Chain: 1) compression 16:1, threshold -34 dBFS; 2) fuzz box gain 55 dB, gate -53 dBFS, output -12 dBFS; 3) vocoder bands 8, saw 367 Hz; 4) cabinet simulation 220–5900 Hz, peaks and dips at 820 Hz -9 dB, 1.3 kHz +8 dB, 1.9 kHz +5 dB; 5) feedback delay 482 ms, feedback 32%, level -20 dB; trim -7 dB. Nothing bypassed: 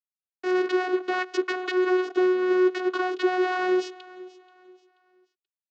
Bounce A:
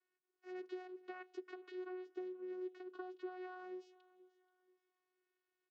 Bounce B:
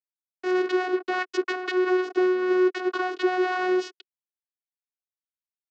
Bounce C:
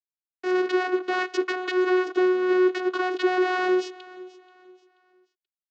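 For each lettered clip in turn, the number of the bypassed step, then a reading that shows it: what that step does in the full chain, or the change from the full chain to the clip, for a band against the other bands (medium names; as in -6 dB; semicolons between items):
2, distortion -4 dB; 5, momentary loudness spread change -7 LU; 1, mean gain reduction 5.5 dB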